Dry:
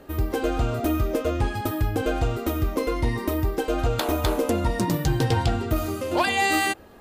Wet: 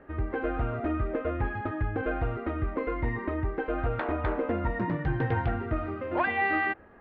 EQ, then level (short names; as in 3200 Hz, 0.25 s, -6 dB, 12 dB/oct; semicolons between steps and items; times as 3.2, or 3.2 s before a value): ladder low-pass 2200 Hz, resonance 45%; air absorption 110 m; +3.0 dB